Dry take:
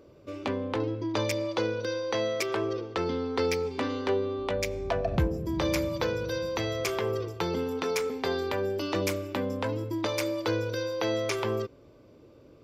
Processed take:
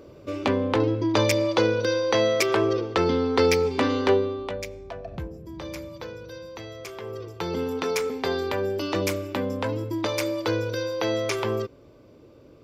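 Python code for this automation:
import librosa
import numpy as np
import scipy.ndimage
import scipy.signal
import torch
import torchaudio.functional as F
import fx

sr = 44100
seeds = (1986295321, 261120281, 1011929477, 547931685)

y = fx.gain(x, sr, db=fx.line((4.12, 7.5), (4.37, 1.0), (4.88, -8.5), (6.94, -8.5), (7.63, 3.0)))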